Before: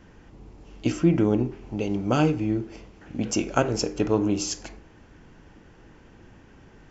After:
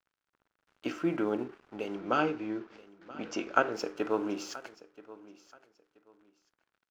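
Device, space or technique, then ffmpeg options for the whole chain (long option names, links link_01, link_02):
pocket radio on a weak battery: -filter_complex "[0:a]highpass=340,lowpass=4100,aeval=exprs='sgn(val(0))*max(abs(val(0))-0.00335,0)':channel_layout=same,equalizer=frequency=1400:width_type=o:width=0.58:gain=8,asettb=1/sr,asplit=3[link_01][link_02][link_03];[link_01]atrim=end=1.954[link_04];[link_02]atrim=start=1.95:end=3.73,asetpts=PTS-STARTPTS,afade=type=in:duration=0.004:curve=qsin,afade=type=out:start_time=1.776:duration=0.004:curve=qsin,lowpass=frequency=6900:width=0.5412,lowpass=frequency=6900:width=1.3066[link_05];[link_03]atrim=start=3.726[link_06];[link_04][link_05]acrossfade=duration=0.004:curve1=hsin:curve2=qsin[link_07];[link_07][link_06]acrossfade=duration=0.004:curve1=qsin:curve2=hsin,aecho=1:1:979|1958:0.112|0.0258,volume=-5dB"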